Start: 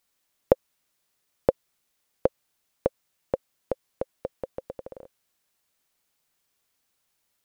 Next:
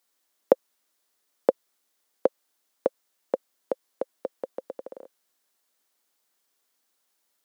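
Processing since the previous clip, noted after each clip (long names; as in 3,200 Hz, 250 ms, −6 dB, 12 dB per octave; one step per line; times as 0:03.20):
high-pass filter 230 Hz 24 dB per octave
parametric band 2,500 Hz −4 dB 0.5 octaves
level +1 dB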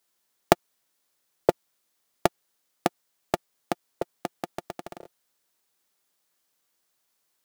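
sub-harmonics by changed cycles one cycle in 3, inverted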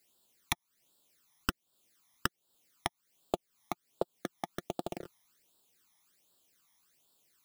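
wrap-around overflow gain 9 dB
downward compressor 4 to 1, threshold −35 dBFS, peak gain reduction 16 dB
all-pass phaser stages 12, 1.3 Hz, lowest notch 460–2,100 Hz
level +6 dB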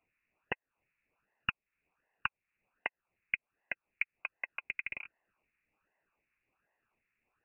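voice inversion scrambler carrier 2,800 Hz
level −1 dB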